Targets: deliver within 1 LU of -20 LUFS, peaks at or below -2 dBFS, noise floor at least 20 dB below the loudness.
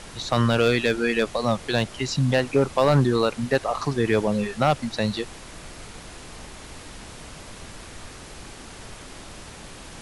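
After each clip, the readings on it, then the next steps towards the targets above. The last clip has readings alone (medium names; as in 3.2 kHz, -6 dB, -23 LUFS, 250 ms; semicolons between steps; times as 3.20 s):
clipped samples 0.2%; clipping level -10.5 dBFS; noise floor -42 dBFS; noise floor target -43 dBFS; loudness -23.0 LUFS; peak level -10.5 dBFS; loudness target -20.0 LUFS
-> clip repair -10.5 dBFS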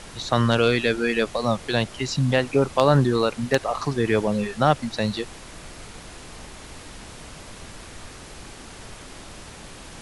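clipped samples 0.0%; noise floor -42 dBFS; noise floor target -43 dBFS
-> noise print and reduce 6 dB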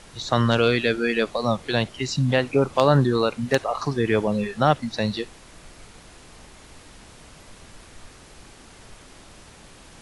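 noise floor -48 dBFS; loudness -22.5 LUFS; peak level -1.5 dBFS; loudness target -20.0 LUFS
-> trim +2.5 dB; peak limiter -2 dBFS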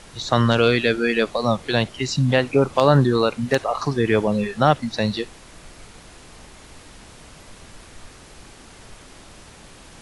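loudness -20.0 LUFS; peak level -2.0 dBFS; noise floor -46 dBFS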